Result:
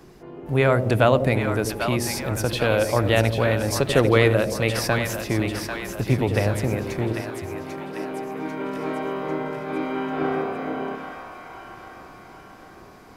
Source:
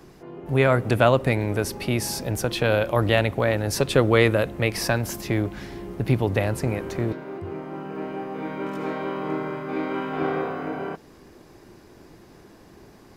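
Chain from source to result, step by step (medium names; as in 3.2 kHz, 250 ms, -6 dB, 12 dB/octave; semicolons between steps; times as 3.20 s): two-band feedback delay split 640 Hz, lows 88 ms, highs 794 ms, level -6.5 dB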